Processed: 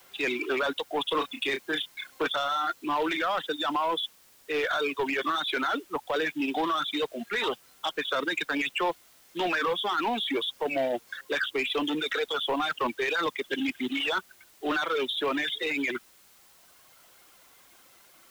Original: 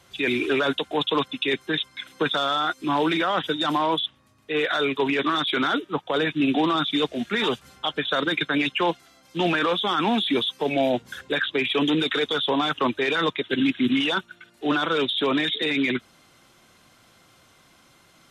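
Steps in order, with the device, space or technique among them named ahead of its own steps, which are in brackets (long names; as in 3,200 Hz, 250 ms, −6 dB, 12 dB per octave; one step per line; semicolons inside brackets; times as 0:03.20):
reverb reduction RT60 1.5 s
tape answering machine (band-pass filter 370–3,300 Hz; soft clipping −21 dBFS, distortion −15 dB; tape wow and flutter; white noise bed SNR 28 dB)
0:01.06–0:02.27: double-tracking delay 30 ms −7 dB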